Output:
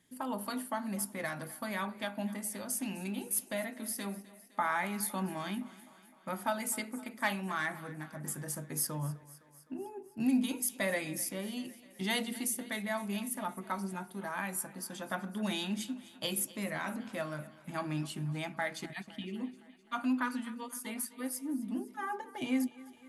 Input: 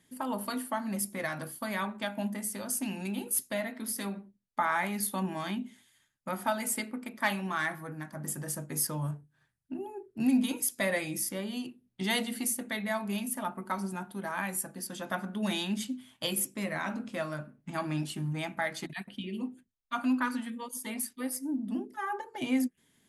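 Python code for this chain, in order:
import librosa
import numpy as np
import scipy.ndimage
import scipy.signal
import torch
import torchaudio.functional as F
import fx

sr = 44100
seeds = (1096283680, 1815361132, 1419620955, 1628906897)

y = fx.echo_thinned(x, sr, ms=256, feedback_pct=65, hz=160.0, wet_db=-19.0)
y = F.gain(torch.from_numpy(y), -3.0).numpy()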